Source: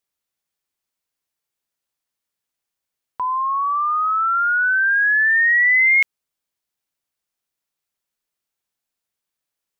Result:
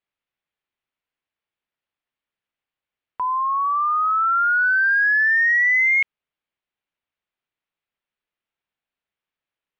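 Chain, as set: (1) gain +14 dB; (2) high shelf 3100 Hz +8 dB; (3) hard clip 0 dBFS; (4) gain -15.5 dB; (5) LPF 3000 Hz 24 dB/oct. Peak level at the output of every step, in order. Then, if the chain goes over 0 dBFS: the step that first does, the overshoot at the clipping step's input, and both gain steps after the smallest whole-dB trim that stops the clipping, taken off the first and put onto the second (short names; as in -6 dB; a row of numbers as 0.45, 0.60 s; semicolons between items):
+3.5, +6.0, 0.0, -15.5, -14.0 dBFS; step 1, 6.0 dB; step 1 +8 dB, step 4 -9.5 dB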